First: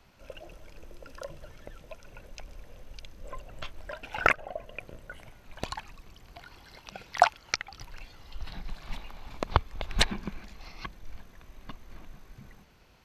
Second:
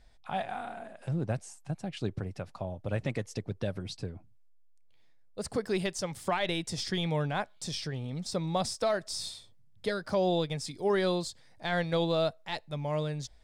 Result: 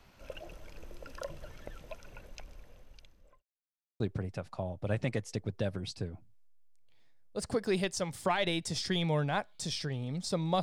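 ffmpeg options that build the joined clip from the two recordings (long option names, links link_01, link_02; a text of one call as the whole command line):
ffmpeg -i cue0.wav -i cue1.wav -filter_complex "[0:a]apad=whole_dur=10.62,atrim=end=10.62,asplit=2[link_01][link_02];[link_01]atrim=end=3.43,asetpts=PTS-STARTPTS,afade=type=out:start_time=1.9:duration=1.53[link_03];[link_02]atrim=start=3.43:end=4,asetpts=PTS-STARTPTS,volume=0[link_04];[1:a]atrim=start=2.02:end=8.64,asetpts=PTS-STARTPTS,afade=type=in:duration=0.004:curve=hsin[link_05];[link_03][link_04][link_05]concat=n=3:v=0:a=1" out.wav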